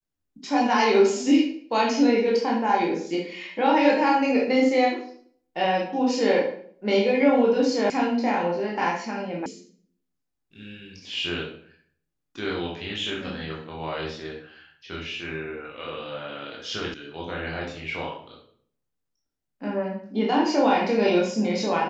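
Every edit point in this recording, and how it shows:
7.9 sound cut off
9.46 sound cut off
16.94 sound cut off

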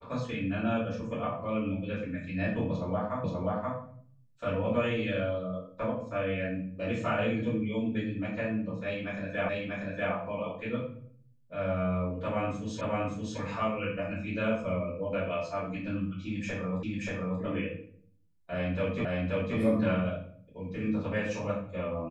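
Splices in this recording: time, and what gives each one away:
3.24 repeat of the last 0.53 s
9.49 repeat of the last 0.64 s
12.81 repeat of the last 0.57 s
16.83 repeat of the last 0.58 s
19.05 repeat of the last 0.53 s

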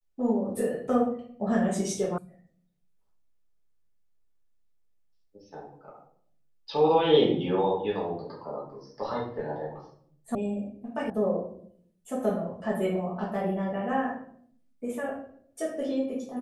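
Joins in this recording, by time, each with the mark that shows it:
2.18 sound cut off
10.35 sound cut off
11.1 sound cut off

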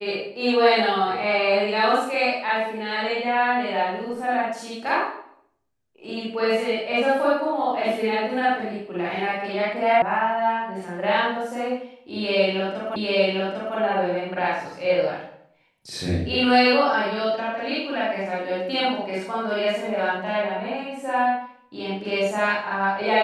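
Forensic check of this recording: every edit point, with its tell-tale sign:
10.02 sound cut off
12.96 repeat of the last 0.8 s

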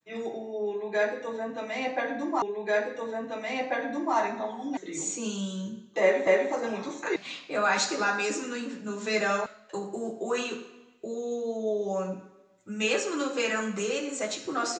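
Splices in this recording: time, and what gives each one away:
2.42 repeat of the last 1.74 s
4.77 sound cut off
6.27 repeat of the last 0.25 s
7.16 sound cut off
9.46 sound cut off

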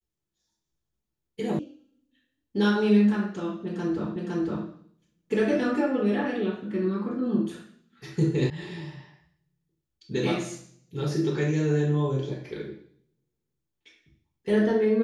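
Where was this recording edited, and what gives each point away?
1.59 sound cut off
4.16 repeat of the last 0.51 s
8.5 sound cut off

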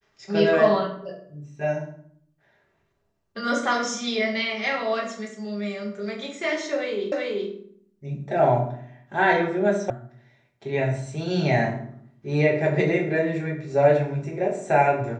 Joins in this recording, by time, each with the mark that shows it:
7.12 repeat of the last 0.38 s
9.9 sound cut off

